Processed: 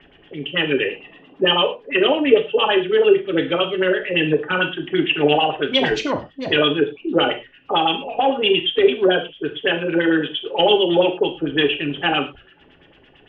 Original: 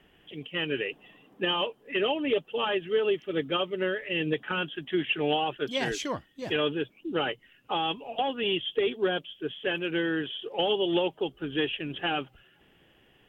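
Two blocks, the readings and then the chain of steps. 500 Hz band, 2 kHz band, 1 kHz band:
+11.5 dB, +10.5 dB, +10.5 dB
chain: LFO low-pass sine 8.9 Hz 440–4400 Hz; gated-style reverb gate 140 ms falling, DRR 4 dB; trim +7 dB

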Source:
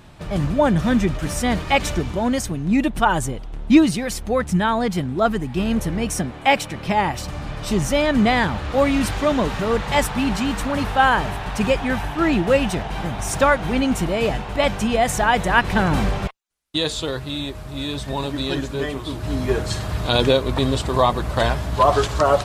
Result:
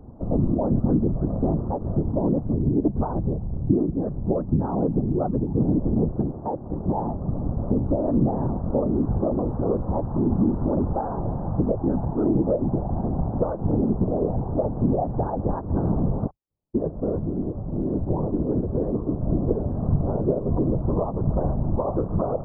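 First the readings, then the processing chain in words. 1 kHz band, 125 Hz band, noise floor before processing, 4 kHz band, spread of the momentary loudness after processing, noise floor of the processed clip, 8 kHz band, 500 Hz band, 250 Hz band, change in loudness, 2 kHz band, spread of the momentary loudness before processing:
-11.5 dB, +1.0 dB, -33 dBFS, under -40 dB, 5 LU, -35 dBFS, under -40 dB, -4.5 dB, -2.0 dB, -4.0 dB, under -30 dB, 9 LU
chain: compression, threshold -21 dBFS, peak gain reduction 13 dB; whisper effect; Gaussian low-pass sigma 12 samples; trim +4.5 dB

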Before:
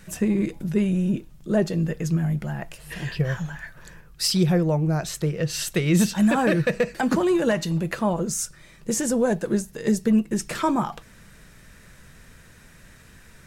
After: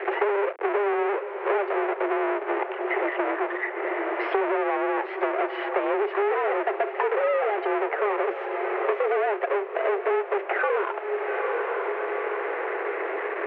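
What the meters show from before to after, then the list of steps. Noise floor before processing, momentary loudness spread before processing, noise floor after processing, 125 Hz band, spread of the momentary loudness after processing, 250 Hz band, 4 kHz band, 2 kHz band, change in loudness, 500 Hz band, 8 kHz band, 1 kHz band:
-50 dBFS, 12 LU, -34 dBFS, under -40 dB, 4 LU, -10.5 dB, -12.0 dB, +4.5 dB, -2.5 dB, +3.5 dB, under -40 dB, +6.5 dB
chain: square wave that keeps the level; peak limiter -19.5 dBFS, peak gain reduction 27 dB; mistuned SSB +200 Hz 190–2200 Hz; on a send: echo that smears into a reverb 870 ms, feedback 41%, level -12 dB; on the sum: three bands compressed up and down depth 100%

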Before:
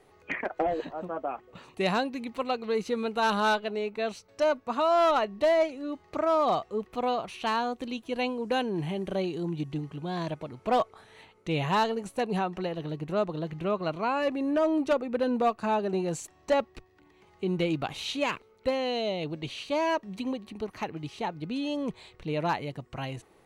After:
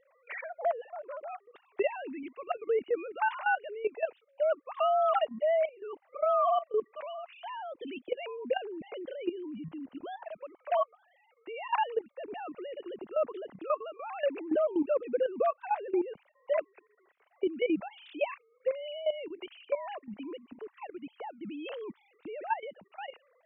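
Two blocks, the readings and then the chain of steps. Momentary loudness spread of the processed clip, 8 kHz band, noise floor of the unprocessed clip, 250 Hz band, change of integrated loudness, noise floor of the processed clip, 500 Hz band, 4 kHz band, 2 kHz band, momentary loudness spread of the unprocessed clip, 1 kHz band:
16 LU, under -30 dB, -61 dBFS, -8.0 dB, -3.5 dB, -69 dBFS, -2.5 dB, -11.0 dB, -4.5 dB, 11 LU, -4.0 dB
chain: formants replaced by sine waves; level held to a coarse grid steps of 14 dB; trim +2.5 dB

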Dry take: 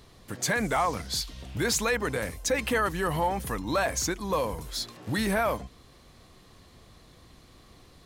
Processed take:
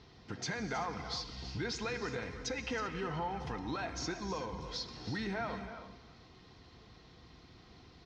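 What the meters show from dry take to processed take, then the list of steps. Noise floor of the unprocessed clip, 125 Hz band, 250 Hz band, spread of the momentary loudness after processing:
-55 dBFS, -7.5 dB, -8.5 dB, 21 LU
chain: Chebyshev low-pass 5.6 kHz, order 4; compression 2.5:1, threshold -36 dBFS, peak gain reduction 9.5 dB; comb of notches 570 Hz; delay 320 ms -14 dB; gated-style reverb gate 410 ms flat, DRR 8.5 dB; trim -1.5 dB

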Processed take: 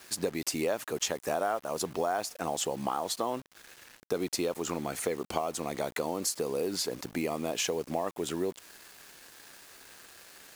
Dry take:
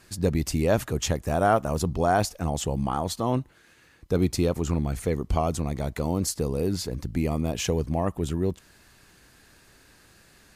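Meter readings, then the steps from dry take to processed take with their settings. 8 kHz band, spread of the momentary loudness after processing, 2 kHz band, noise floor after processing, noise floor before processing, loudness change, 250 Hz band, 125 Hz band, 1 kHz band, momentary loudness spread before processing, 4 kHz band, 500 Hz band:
-0.5 dB, 19 LU, -3.5 dB, -56 dBFS, -57 dBFS, -6.0 dB, -9.0 dB, -18.0 dB, -5.5 dB, 6 LU, -0.5 dB, -4.5 dB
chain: high-pass 390 Hz 12 dB/octave; compression 6:1, threshold -32 dBFS, peak gain reduction 15 dB; bit crusher 9-bit; trim +4.5 dB

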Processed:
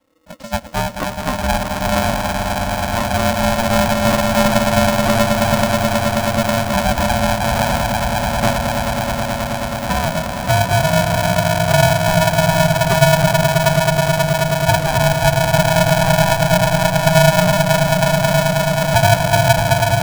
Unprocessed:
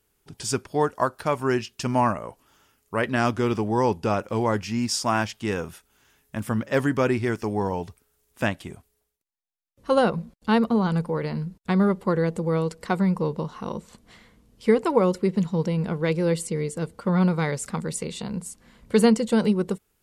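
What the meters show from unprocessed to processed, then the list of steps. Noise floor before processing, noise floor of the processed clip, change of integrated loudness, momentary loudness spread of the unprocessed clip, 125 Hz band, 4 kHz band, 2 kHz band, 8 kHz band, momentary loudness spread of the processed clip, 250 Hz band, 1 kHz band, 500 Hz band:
-72 dBFS, -25 dBFS, +9.0 dB, 11 LU, +12.0 dB, +16.5 dB, +14.5 dB, +13.5 dB, 7 LU, +4.5 dB, +12.0 dB, +9.0 dB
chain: low-pass that closes with the level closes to 410 Hz, closed at -17 dBFS; tilt EQ -3.5 dB/octave; frequency shift +67 Hz; on a send: echo with a slow build-up 107 ms, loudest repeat 8, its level -8.5 dB; on the sum: polarity switched at an audio rate 400 Hz; trim -1.5 dB

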